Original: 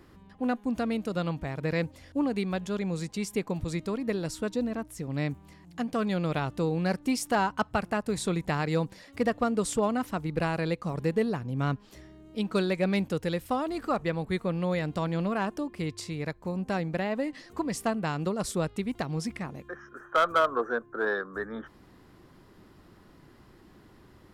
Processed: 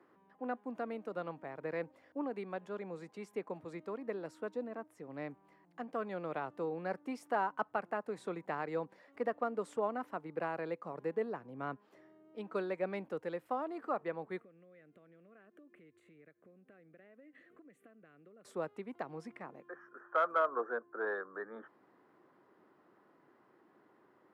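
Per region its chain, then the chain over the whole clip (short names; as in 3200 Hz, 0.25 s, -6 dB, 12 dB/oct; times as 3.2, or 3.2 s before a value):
14.4–18.45 compressor 10:1, threshold -42 dBFS + fixed phaser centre 2200 Hz, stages 4
whole clip: HPF 120 Hz 24 dB/oct; three-band isolator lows -17 dB, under 310 Hz, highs -19 dB, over 2000 Hz; gain -6 dB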